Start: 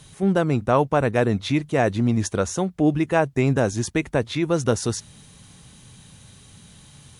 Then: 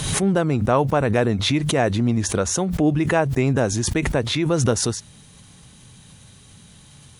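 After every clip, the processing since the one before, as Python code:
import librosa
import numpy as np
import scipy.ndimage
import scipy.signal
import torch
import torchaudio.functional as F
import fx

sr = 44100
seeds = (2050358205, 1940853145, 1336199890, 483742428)

y = fx.pre_swell(x, sr, db_per_s=39.0)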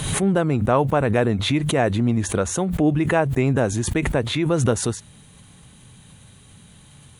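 y = fx.peak_eq(x, sr, hz=5300.0, db=-9.5, octaves=0.57)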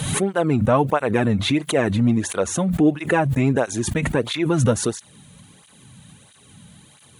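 y = fx.flanger_cancel(x, sr, hz=1.5, depth_ms=3.0)
y = y * 10.0 ** (3.5 / 20.0)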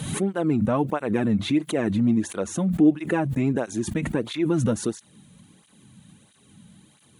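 y = fx.small_body(x, sr, hz=(210.0, 310.0), ring_ms=40, db=8)
y = y * 10.0 ** (-8.0 / 20.0)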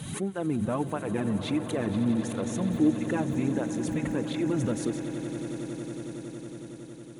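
y = fx.echo_swell(x, sr, ms=92, loudest=8, wet_db=-16)
y = y * 10.0 ** (-6.5 / 20.0)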